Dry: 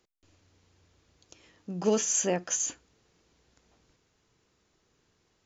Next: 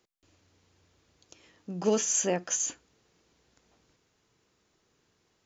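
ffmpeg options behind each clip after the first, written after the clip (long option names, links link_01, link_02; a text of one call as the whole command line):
ffmpeg -i in.wav -af "lowshelf=frequency=63:gain=-8.5" out.wav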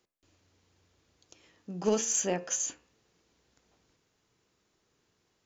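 ffmpeg -i in.wav -af "bandreject=frequency=76.1:width_type=h:width=4,bandreject=frequency=152.2:width_type=h:width=4,bandreject=frequency=228.3:width_type=h:width=4,bandreject=frequency=304.4:width_type=h:width=4,bandreject=frequency=380.5:width_type=h:width=4,bandreject=frequency=456.6:width_type=h:width=4,bandreject=frequency=532.7:width_type=h:width=4,bandreject=frequency=608.8:width_type=h:width=4,bandreject=frequency=684.9:width_type=h:width=4,bandreject=frequency=761:width_type=h:width=4,bandreject=frequency=837.1:width_type=h:width=4,bandreject=frequency=913.2:width_type=h:width=4,bandreject=frequency=989.3:width_type=h:width=4,bandreject=frequency=1065.4:width_type=h:width=4,bandreject=frequency=1141.5:width_type=h:width=4,bandreject=frequency=1217.6:width_type=h:width=4,bandreject=frequency=1293.7:width_type=h:width=4,bandreject=frequency=1369.8:width_type=h:width=4,bandreject=frequency=1445.9:width_type=h:width=4,bandreject=frequency=1522:width_type=h:width=4,bandreject=frequency=1598.1:width_type=h:width=4,bandreject=frequency=1674.2:width_type=h:width=4,bandreject=frequency=1750.3:width_type=h:width=4,bandreject=frequency=1826.4:width_type=h:width=4,bandreject=frequency=1902.5:width_type=h:width=4,bandreject=frequency=1978.6:width_type=h:width=4,bandreject=frequency=2054.7:width_type=h:width=4,bandreject=frequency=2130.8:width_type=h:width=4,bandreject=frequency=2206.9:width_type=h:width=4,bandreject=frequency=2283:width_type=h:width=4,bandreject=frequency=2359.1:width_type=h:width=4,bandreject=frequency=2435.2:width_type=h:width=4,bandreject=frequency=2511.3:width_type=h:width=4,bandreject=frequency=2587.4:width_type=h:width=4,bandreject=frequency=2663.5:width_type=h:width=4,bandreject=frequency=2739.6:width_type=h:width=4,bandreject=frequency=2815.7:width_type=h:width=4,bandreject=frequency=2891.8:width_type=h:width=4,aeval=exprs='0.2*(cos(1*acos(clip(val(0)/0.2,-1,1)))-cos(1*PI/2))+0.0158*(cos(3*acos(clip(val(0)/0.2,-1,1)))-cos(3*PI/2))':channel_layout=same" out.wav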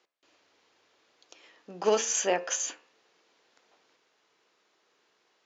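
ffmpeg -i in.wav -af "highpass=490,lowpass=4600,volume=7.5dB" out.wav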